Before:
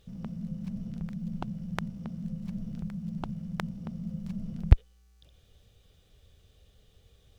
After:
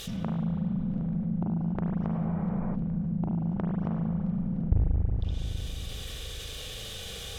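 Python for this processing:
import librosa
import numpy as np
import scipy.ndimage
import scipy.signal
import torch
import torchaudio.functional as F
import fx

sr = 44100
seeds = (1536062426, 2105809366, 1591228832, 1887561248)

y = fx.env_lowpass_down(x, sr, base_hz=380.0, full_db=-32.0)
y = fx.high_shelf(y, sr, hz=2600.0, db=11.5)
y = fx.echo_wet_highpass(y, sr, ms=90, feedback_pct=58, hz=3900.0, wet_db=-11.0)
y = fx.rev_spring(y, sr, rt60_s=2.3, pass_ms=(36, 46), chirp_ms=70, drr_db=-2.5)
y = fx.spec_repair(y, sr, seeds[0], start_s=2.16, length_s=0.56, low_hz=300.0, high_hz=2500.0, source='before')
y = fx.low_shelf(y, sr, hz=320.0, db=-9.0)
y = fx.env_flatten(y, sr, amount_pct=50)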